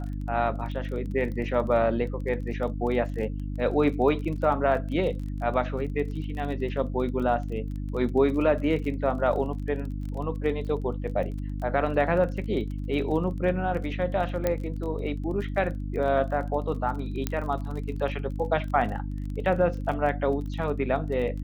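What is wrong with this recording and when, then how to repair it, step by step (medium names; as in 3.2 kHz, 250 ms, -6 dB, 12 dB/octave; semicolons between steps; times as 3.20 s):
crackle 26 per s -35 dBFS
hum 50 Hz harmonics 6 -32 dBFS
14.47 s: pop -12 dBFS
17.27 s: pop -12 dBFS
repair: de-click; de-hum 50 Hz, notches 6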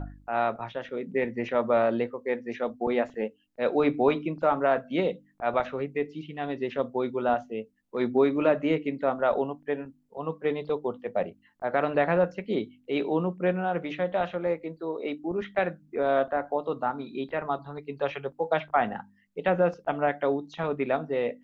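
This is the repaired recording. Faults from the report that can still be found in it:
nothing left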